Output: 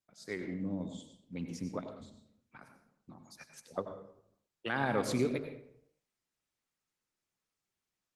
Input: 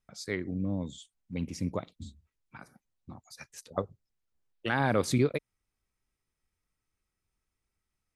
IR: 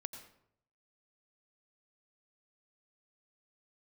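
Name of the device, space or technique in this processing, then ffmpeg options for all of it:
far-field microphone of a smart speaker: -filter_complex "[1:a]atrim=start_sample=2205[s0];[0:a][s0]afir=irnorm=-1:irlink=0,highpass=150,dynaudnorm=f=170:g=3:m=2,volume=0.447" -ar 48000 -c:a libopus -b:a 16k

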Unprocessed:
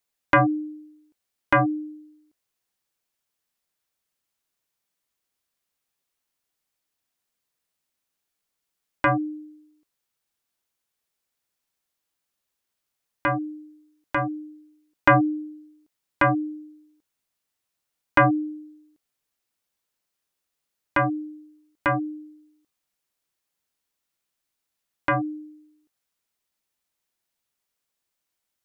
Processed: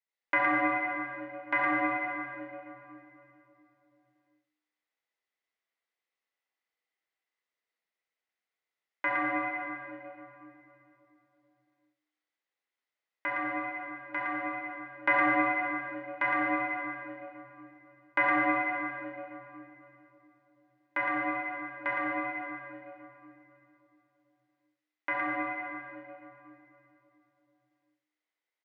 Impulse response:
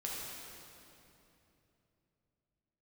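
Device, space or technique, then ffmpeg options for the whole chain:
station announcement: -filter_complex "[0:a]highpass=370,lowpass=3700,equalizer=f=2000:t=o:w=0.2:g=12,aecho=1:1:67.06|113.7:0.355|0.631[s0];[1:a]atrim=start_sample=2205[s1];[s0][s1]afir=irnorm=-1:irlink=0,volume=0.376"

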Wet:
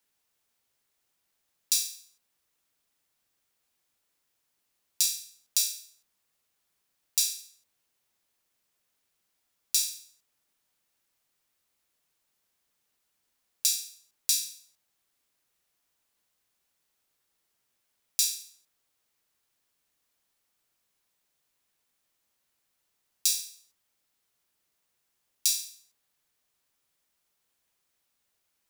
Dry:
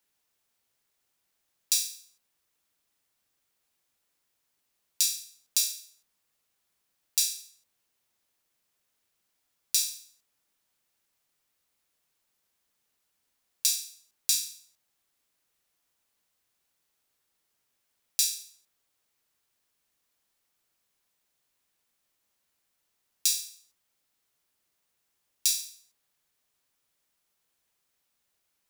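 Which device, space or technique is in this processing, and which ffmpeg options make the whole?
one-band saturation: -filter_complex "[0:a]acrossover=split=330|2800[s0][s1][s2];[s1]asoftclip=type=tanh:threshold=0.01[s3];[s0][s3][s2]amix=inputs=3:normalize=0"

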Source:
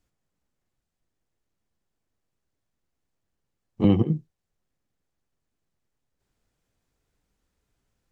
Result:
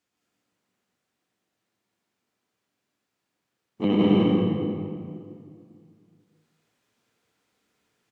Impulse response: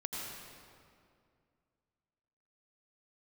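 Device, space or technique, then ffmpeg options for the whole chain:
stadium PA: -filter_complex "[0:a]highpass=200,equalizer=f=2600:t=o:w=2.3:g=5,aecho=1:1:169.1|207:0.708|0.794[s0];[1:a]atrim=start_sample=2205[s1];[s0][s1]afir=irnorm=-1:irlink=0"

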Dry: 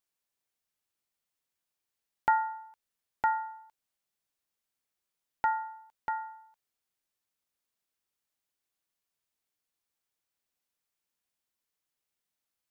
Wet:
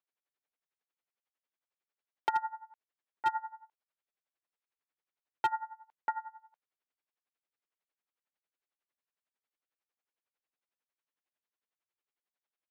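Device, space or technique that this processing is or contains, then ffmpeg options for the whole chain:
helicopter radio: -af "highpass=320,lowpass=2700,aeval=exprs='val(0)*pow(10,-20*(0.5-0.5*cos(2*PI*11*n/s))/20)':c=same,asoftclip=type=hard:threshold=0.0631,volume=1.33"

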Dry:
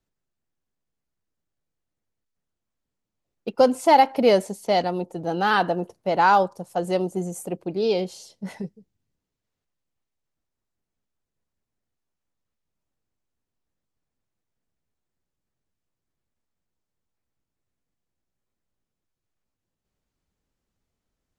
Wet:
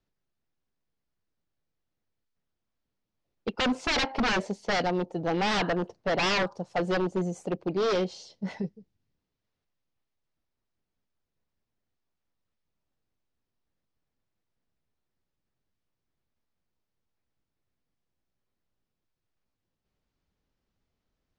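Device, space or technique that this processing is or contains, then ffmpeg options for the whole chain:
synthesiser wavefolder: -af "aeval=exprs='0.0944*(abs(mod(val(0)/0.0944+3,4)-2)-1)':c=same,lowpass=f=5700:w=0.5412,lowpass=f=5700:w=1.3066"

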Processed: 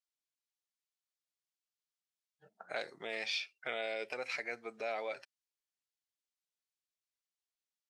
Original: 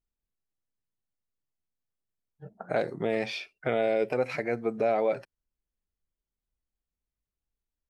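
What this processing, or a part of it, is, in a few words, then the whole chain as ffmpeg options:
piezo pickup straight into a mixer: -af "lowpass=5100,aderivative,volume=2.51"

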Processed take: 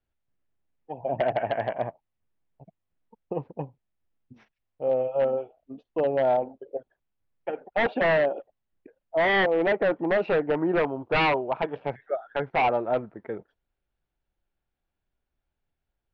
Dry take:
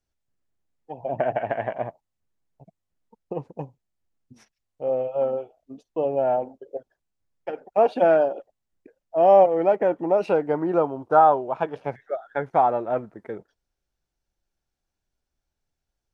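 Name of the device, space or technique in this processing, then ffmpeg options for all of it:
synthesiser wavefolder: -af "aeval=exprs='0.15*(abs(mod(val(0)/0.15+3,4)-2)-1)':c=same,lowpass=f=3400:w=0.5412,lowpass=f=3400:w=1.3066"

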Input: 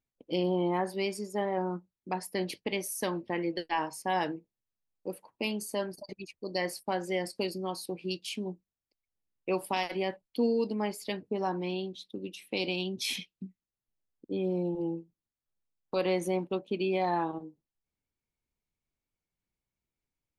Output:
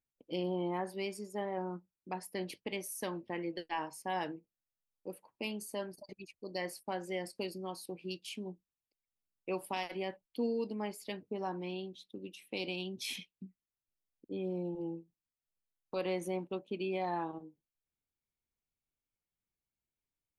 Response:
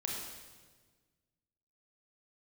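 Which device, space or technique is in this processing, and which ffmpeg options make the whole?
exciter from parts: -filter_complex "[0:a]asplit=2[s0][s1];[s1]highpass=f=2400:w=0.5412,highpass=f=2400:w=1.3066,asoftclip=type=tanh:threshold=0.0237,highpass=f=2700:w=0.5412,highpass=f=2700:w=1.3066,volume=0.224[s2];[s0][s2]amix=inputs=2:normalize=0,volume=0.473"

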